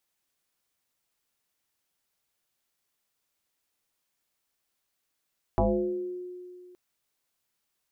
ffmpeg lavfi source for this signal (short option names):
-f lavfi -i "aevalsrc='0.112*pow(10,-3*t/2.33)*sin(2*PI*360*t+3.8*pow(10,-3*t/0.98)*sin(2*PI*0.43*360*t))':d=1.17:s=44100"